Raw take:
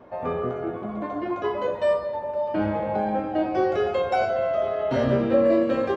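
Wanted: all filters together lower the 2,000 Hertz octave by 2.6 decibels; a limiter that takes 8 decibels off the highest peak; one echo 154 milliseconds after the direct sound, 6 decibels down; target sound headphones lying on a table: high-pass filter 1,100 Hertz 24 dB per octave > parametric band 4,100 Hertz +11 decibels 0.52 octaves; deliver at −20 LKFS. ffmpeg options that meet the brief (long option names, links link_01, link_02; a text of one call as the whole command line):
ffmpeg -i in.wav -af "equalizer=frequency=2000:width_type=o:gain=-4,alimiter=limit=-17dB:level=0:latency=1,highpass=frequency=1100:width=0.5412,highpass=frequency=1100:width=1.3066,equalizer=frequency=4100:width_type=o:width=0.52:gain=11,aecho=1:1:154:0.501,volume=18dB" out.wav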